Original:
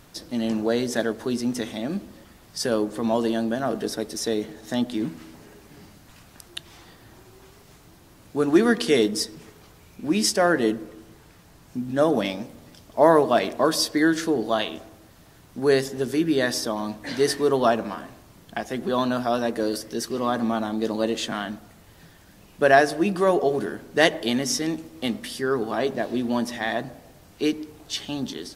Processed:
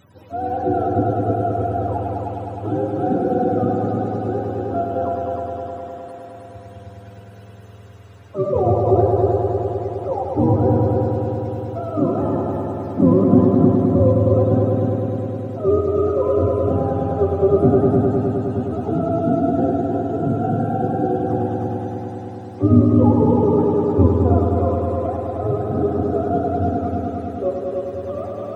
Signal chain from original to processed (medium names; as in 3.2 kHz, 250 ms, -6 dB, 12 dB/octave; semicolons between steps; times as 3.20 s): spectrum inverted on a logarithmic axis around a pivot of 410 Hz; multi-head delay 103 ms, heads all three, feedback 73%, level -6.5 dB; trim +2 dB